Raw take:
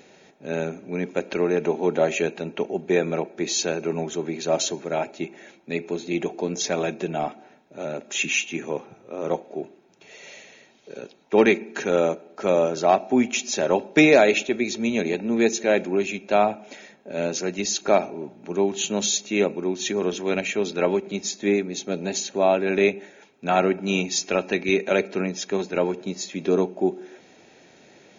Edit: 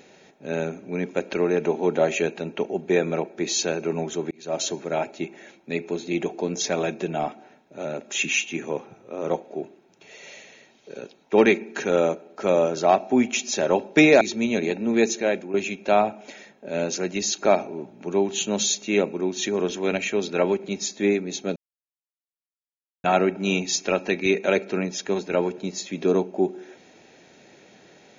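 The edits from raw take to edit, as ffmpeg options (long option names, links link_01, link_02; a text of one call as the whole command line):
ffmpeg -i in.wav -filter_complex "[0:a]asplit=6[link_01][link_02][link_03][link_04][link_05][link_06];[link_01]atrim=end=4.31,asetpts=PTS-STARTPTS,afade=type=out:start_time=4.306:duration=0.004:curve=hsin[link_07];[link_02]atrim=start=4.31:end=14.212,asetpts=PTS-STARTPTS,afade=type=in:duration=0.41[link_08];[link_03]atrim=start=14.638:end=15.97,asetpts=PTS-STARTPTS,afade=type=out:start_time=0.902:duration=0.43:silence=0.298538[link_09];[link_04]atrim=start=15.97:end=21.99,asetpts=PTS-STARTPTS,afade=type=in:duration=0.004:curve=hsin:silence=0.298538,afade=type=out:start_time=6.016:duration=0.004:curve=hsin[link_10];[link_05]atrim=start=21.99:end=23.47,asetpts=PTS-STARTPTS,volume=0[link_11];[link_06]atrim=start=23.47,asetpts=PTS-STARTPTS,afade=type=in:duration=0.004:curve=hsin[link_12];[link_07][link_08]concat=n=2:v=0:a=1[link_13];[link_09][link_10][link_11][link_12]concat=n=4:v=0:a=1[link_14];[link_13][link_14]acrossfade=duration=0.004:curve1=hsin:curve2=hsin" out.wav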